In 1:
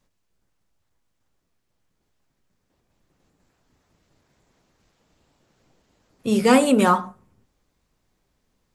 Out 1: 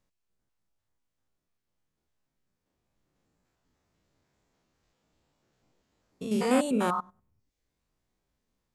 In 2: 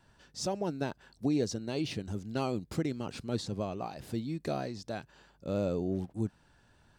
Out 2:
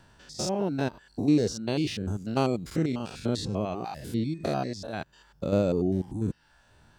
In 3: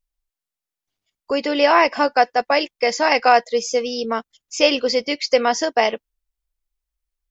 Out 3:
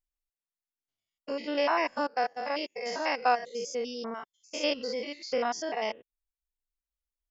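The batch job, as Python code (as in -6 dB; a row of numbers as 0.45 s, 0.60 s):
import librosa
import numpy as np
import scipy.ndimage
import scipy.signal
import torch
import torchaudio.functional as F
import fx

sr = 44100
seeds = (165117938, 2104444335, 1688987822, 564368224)

y = fx.spec_steps(x, sr, hold_ms=100)
y = fx.dereverb_blind(y, sr, rt60_s=0.64)
y = librosa.util.normalize(y) * 10.0 ** (-12 / 20.0)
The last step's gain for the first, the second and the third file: -6.0 dB, +9.0 dB, -9.0 dB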